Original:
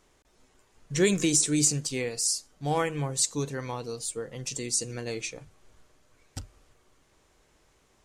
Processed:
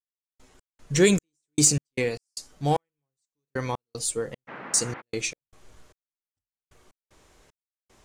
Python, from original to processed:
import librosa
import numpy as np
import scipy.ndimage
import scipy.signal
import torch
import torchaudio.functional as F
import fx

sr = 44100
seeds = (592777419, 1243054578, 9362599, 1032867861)

p1 = 10.0 ** (-27.0 / 20.0) * np.tanh(x / 10.0 ** (-27.0 / 20.0))
p2 = x + (p1 * 10.0 ** (-9.0 / 20.0))
p3 = fx.step_gate(p2, sr, bpm=76, pattern='..x.xx..x.x.xx..', floor_db=-60.0, edge_ms=4.5)
p4 = fx.dmg_noise_band(p3, sr, seeds[0], low_hz=130.0, high_hz=1900.0, level_db=-44.0, at=(4.47, 5.0), fade=0.02)
y = p4 * 10.0 ** (3.5 / 20.0)